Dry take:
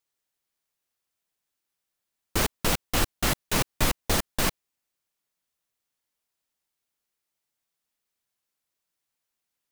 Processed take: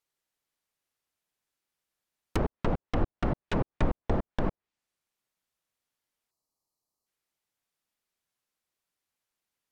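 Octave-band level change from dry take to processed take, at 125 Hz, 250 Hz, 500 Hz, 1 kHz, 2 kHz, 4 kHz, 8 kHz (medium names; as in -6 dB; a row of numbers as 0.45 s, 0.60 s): 0.0 dB, 0.0 dB, -1.0 dB, -4.5 dB, -11.0 dB, -18.0 dB, -26.0 dB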